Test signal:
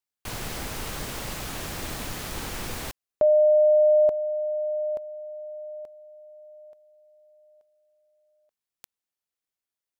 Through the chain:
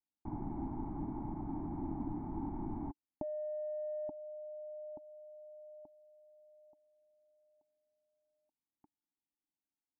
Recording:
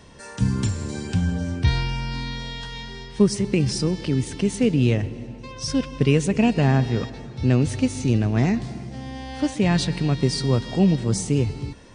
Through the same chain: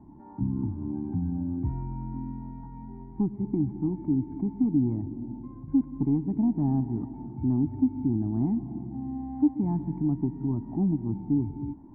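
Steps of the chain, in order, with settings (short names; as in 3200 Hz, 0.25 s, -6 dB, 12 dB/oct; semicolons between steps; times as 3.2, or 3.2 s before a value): low shelf 200 Hz -5 dB; in parallel at +2 dB: compressor, threshold -34 dBFS; on the sum: soft clip -11.5 dBFS; vocal tract filter u; air absorption 170 m; fixed phaser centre 1200 Hz, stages 4; gain +7.5 dB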